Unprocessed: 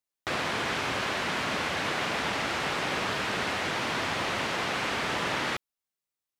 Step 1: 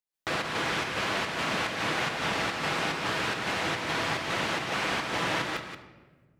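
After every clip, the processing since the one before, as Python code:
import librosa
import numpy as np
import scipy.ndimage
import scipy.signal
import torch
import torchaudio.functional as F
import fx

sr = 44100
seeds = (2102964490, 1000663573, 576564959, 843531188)

y = fx.volume_shaper(x, sr, bpm=144, per_beat=1, depth_db=-8, release_ms=134.0, shape='slow start')
y = y + 10.0 ** (-8.5 / 20.0) * np.pad(y, (int(179 * sr / 1000.0), 0))[:len(y)]
y = fx.room_shoebox(y, sr, seeds[0], volume_m3=1100.0, walls='mixed', distance_m=0.68)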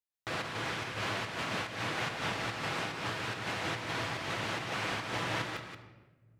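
y = fx.peak_eq(x, sr, hz=110.0, db=14.0, octaves=0.24)
y = fx.am_noise(y, sr, seeds[1], hz=5.7, depth_pct=50)
y = y * 10.0 ** (-4.5 / 20.0)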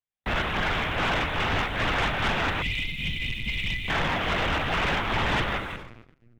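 y = fx.spec_erase(x, sr, start_s=2.62, length_s=1.27, low_hz=230.0, high_hz=1900.0)
y = fx.lpc_vocoder(y, sr, seeds[2], excitation='pitch_kept', order=10)
y = fx.leveller(y, sr, passes=2)
y = y * 10.0 ** (4.5 / 20.0)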